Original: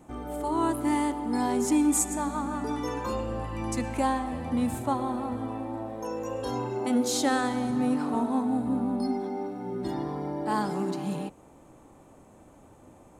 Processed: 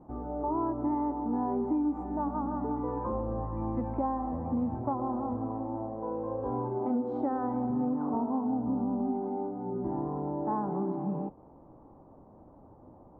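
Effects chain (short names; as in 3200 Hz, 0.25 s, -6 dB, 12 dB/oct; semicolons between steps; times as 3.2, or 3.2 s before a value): Chebyshev low-pass 1000 Hz, order 3; compressor, threshold -26 dBFS, peak gain reduction 6 dB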